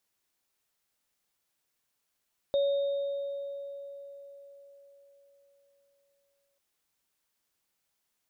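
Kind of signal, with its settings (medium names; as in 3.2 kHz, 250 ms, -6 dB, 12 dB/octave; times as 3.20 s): sine partials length 4.04 s, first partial 561 Hz, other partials 3.69 kHz, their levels -16.5 dB, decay 4.49 s, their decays 2.25 s, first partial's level -22.5 dB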